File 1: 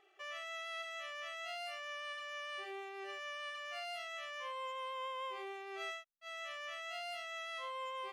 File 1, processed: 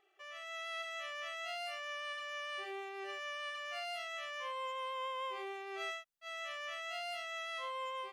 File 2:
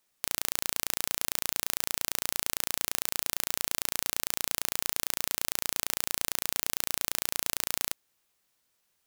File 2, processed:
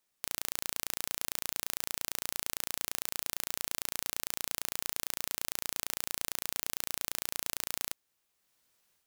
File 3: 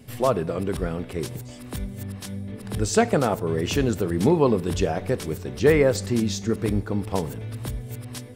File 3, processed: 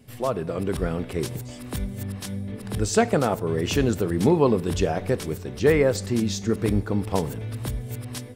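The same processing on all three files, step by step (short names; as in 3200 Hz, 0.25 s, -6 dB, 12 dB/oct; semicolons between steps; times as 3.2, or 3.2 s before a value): AGC gain up to 7 dB; gain -5 dB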